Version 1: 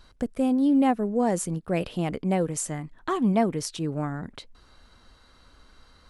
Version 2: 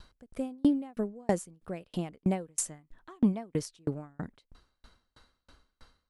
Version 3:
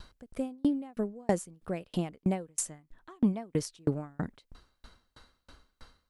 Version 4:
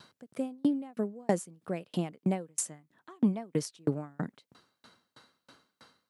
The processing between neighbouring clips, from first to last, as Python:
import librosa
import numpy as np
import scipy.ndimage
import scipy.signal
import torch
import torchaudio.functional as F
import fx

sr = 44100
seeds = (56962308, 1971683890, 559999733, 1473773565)

y1 = fx.tremolo_decay(x, sr, direction='decaying', hz=3.1, depth_db=39)
y1 = y1 * librosa.db_to_amplitude(2.5)
y2 = fx.rider(y1, sr, range_db=4, speed_s=0.5)
y3 = scipy.signal.sosfilt(scipy.signal.butter(4, 130.0, 'highpass', fs=sr, output='sos'), y2)